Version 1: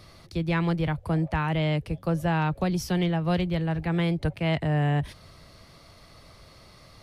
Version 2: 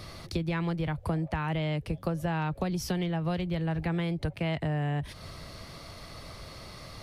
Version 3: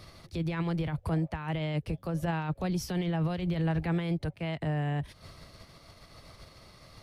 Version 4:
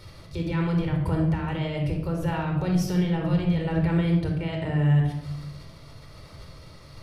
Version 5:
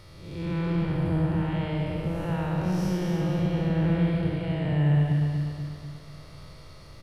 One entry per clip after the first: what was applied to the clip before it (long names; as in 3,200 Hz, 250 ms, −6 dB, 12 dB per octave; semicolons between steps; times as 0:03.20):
downward compressor 10 to 1, threshold −34 dBFS, peak gain reduction 13.5 dB; level +6.5 dB
brickwall limiter −30 dBFS, peak gain reduction 11 dB; expander for the loud parts 2.5 to 1, over −46 dBFS; level +8 dB
convolution reverb RT60 0.90 s, pre-delay 24 ms, DRR 1.5 dB
spectrum smeared in time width 251 ms; on a send: repeating echo 244 ms, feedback 50%, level −5 dB; on the sum: level −1 dB